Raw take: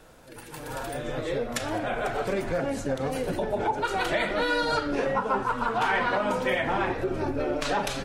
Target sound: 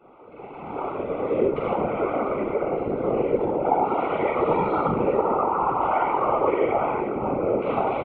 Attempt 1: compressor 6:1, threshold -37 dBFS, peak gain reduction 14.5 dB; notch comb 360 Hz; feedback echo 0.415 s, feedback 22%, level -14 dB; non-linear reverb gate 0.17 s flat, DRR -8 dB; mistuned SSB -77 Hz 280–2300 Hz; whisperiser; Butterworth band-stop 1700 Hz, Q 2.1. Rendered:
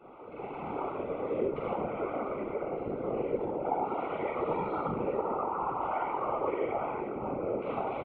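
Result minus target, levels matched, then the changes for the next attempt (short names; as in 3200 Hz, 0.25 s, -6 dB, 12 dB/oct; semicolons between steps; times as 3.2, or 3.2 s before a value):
compressor: peak gain reduction +10 dB
change: compressor 6:1, threshold -25 dBFS, peak gain reduction 4.5 dB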